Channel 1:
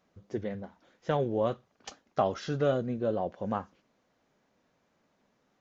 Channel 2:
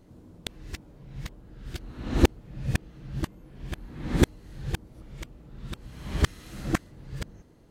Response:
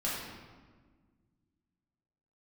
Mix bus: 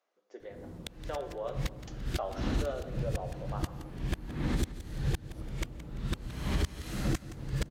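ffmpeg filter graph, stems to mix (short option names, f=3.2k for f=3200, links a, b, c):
-filter_complex "[0:a]highpass=f=390:w=0.5412,highpass=f=390:w=1.3066,volume=-10.5dB,asplit=3[a][b][c];[b]volume=-8.5dB[d];[1:a]acrossover=split=120|3000[e][f][g];[f]acompressor=threshold=-33dB:ratio=4[h];[e][h][g]amix=inputs=3:normalize=0,alimiter=limit=-21dB:level=0:latency=1:release=246,dynaudnorm=f=120:g=3:m=8dB,adelay=400,volume=-3.5dB,asplit=2[i][j];[j]volume=-15.5dB[k];[c]apad=whole_len=357306[l];[i][l]sidechaincompress=threshold=-47dB:ratio=8:attack=16:release=132[m];[2:a]atrim=start_sample=2205[n];[d][n]afir=irnorm=-1:irlink=0[o];[k]aecho=0:1:170|340|510|680|850|1020:1|0.41|0.168|0.0689|0.0283|0.0116[p];[a][m][o][p]amix=inputs=4:normalize=0,alimiter=limit=-20dB:level=0:latency=1:release=271"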